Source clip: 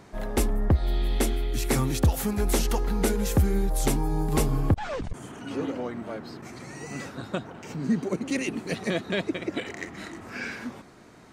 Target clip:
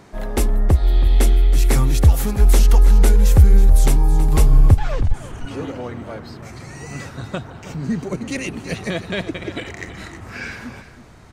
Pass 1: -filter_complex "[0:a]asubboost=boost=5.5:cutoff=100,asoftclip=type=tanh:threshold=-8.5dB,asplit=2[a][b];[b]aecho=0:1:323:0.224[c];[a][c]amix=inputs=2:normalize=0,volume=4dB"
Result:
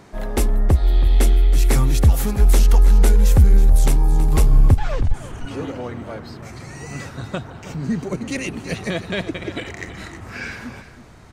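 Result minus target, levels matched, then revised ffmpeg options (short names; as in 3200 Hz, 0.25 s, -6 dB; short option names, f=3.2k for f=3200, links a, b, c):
soft clip: distortion +10 dB
-filter_complex "[0:a]asubboost=boost=5.5:cutoff=100,asoftclip=type=tanh:threshold=-2.5dB,asplit=2[a][b];[b]aecho=0:1:323:0.224[c];[a][c]amix=inputs=2:normalize=0,volume=4dB"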